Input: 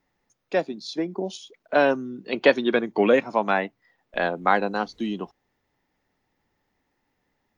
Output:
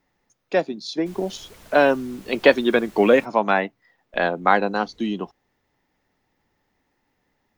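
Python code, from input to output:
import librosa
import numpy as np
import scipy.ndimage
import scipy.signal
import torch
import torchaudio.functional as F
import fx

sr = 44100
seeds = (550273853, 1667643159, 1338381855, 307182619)

y = fx.dmg_noise_colour(x, sr, seeds[0], colour='pink', level_db=-51.0, at=(1.05, 3.24), fade=0.02)
y = F.gain(torch.from_numpy(y), 3.0).numpy()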